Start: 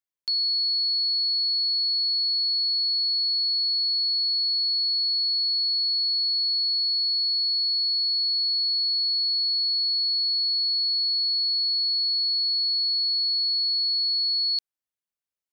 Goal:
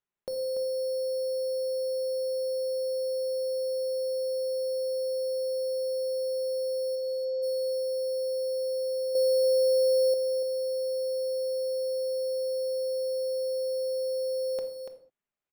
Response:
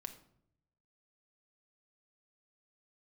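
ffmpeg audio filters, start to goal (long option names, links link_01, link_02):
-filter_complex "[0:a]acrusher=samples=9:mix=1:aa=0.000001,asplit=3[link_01][link_02][link_03];[link_01]afade=type=out:start_time=6.95:duration=0.02[link_04];[link_02]lowpass=frequency=4100:width=0.5412,lowpass=frequency=4100:width=1.3066,afade=type=in:start_time=6.95:duration=0.02,afade=type=out:start_time=7.42:duration=0.02[link_05];[link_03]afade=type=in:start_time=7.42:duration=0.02[link_06];[link_04][link_05][link_06]amix=inputs=3:normalize=0[link_07];[1:a]atrim=start_sample=2205,afade=type=out:start_time=0.27:duration=0.01,atrim=end_sample=12348[link_08];[link_07][link_08]afir=irnorm=-1:irlink=0,asettb=1/sr,asplit=3[link_09][link_10][link_11];[link_09]atrim=end=9.154[link_12];[link_10]atrim=start=9.15:end=10.14,asetpts=PTS-STARTPTS,afade=type=in:duration=0.004:curve=qsin,afade=type=out:start_time=0.986:duration=0.004:curve=qsin,acontrast=88[link_13];[link_11]atrim=start=10.136[link_14];[link_12][link_13]acrossfade=duration=0.004:curve1=hsin:curve2=qsin[link_15];[link_15][link_14]acrossfade=duration=0.004:curve1=qsin:curve2=hsin,aecho=1:1:288:0.422"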